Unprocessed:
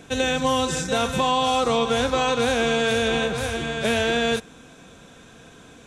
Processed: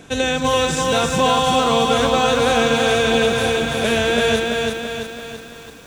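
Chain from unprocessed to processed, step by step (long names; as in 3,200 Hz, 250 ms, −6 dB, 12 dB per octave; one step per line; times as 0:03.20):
feedback echo at a low word length 335 ms, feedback 55%, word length 8 bits, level −3 dB
level +3 dB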